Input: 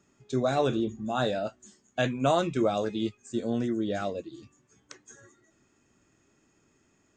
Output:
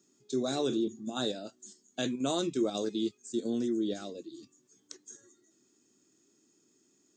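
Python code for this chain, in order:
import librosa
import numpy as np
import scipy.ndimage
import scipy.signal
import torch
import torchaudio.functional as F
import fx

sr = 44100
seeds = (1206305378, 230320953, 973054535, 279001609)

p1 = scipy.signal.sosfilt(scipy.signal.butter(2, 330.0, 'highpass', fs=sr, output='sos'), x)
p2 = fx.band_shelf(p1, sr, hz=1200.0, db=-14.5, octaves=2.8)
p3 = fx.level_steps(p2, sr, step_db=20)
y = p2 + (p3 * librosa.db_to_amplitude(1.0))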